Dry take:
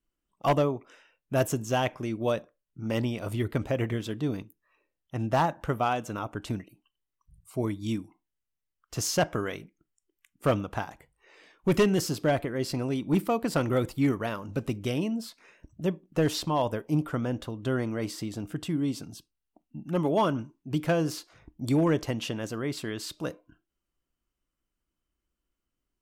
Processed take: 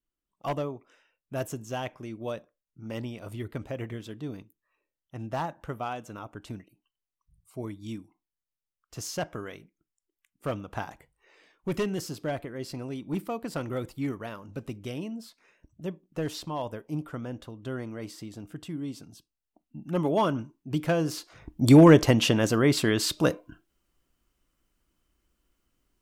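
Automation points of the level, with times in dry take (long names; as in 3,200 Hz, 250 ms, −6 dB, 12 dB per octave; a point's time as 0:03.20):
0:10.61 −7 dB
0:10.87 +0.5 dB
0:11.68 −6.5 dB
0:19.12 −6.5 dB
0:19.98 0 dB
0:21.09 0 dB
0:21.63 +10 dB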